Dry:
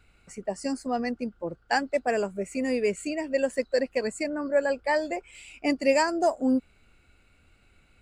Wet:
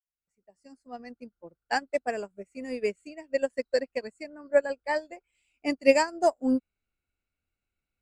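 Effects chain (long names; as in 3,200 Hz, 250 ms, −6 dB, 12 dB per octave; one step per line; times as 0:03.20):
fade in at the beginning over 1.19 s
expander for the loud parts 2.5 to 1, over −38 dBFS
level +4.5 dB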